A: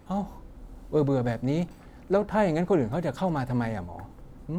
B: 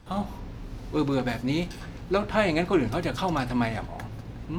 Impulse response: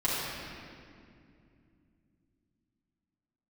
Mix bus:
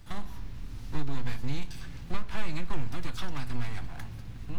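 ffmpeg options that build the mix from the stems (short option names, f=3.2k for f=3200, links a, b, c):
-filter_complex "[0:a]aeval=exprs='abs(val(0))':c=same,acrossover=split=130[a][b];[b]acompressor=threshold=-40dB:ratio=2[c];[a][c]amix=inputs=2:normalize=0,volume=1dB,asplit=2[d][e];[e]volume=-22dB[f];[1:a]acompressor=threshold=-30dB:ratio=6,volume=-1dB[g];[2:a]atrim=start_sample=2205[h];[f][h]afir=irnorm=-1:irlink=0[i];[d][g][i]amix=inputs=3:normalize=0,equalizer=f=520:t=o:w=2.4:g=-13.5"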